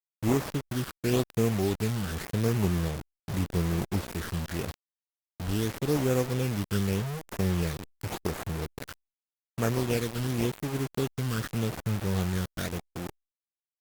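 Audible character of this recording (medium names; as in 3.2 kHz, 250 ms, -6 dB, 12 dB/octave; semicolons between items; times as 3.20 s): aliases and images of a low sample rate 3 kHz, jitter 20%; phasing stages 12, 0.86 Hz, lowest notch 690–4100 Hz; a quantiser's noise floor 6-bit, dither none; Opus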